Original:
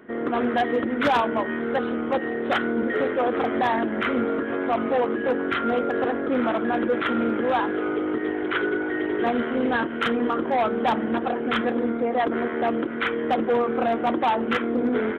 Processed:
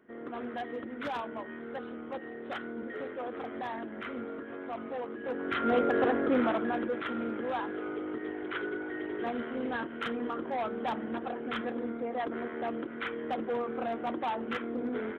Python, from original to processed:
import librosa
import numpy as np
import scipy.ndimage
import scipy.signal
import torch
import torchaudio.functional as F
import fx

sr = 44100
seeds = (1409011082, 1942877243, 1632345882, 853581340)

y = fx.gain(x, sr, db=fx.line((5.16, -15.0), (5.76, -2.5), (6.29, -2.5), (6.99, -11.0)))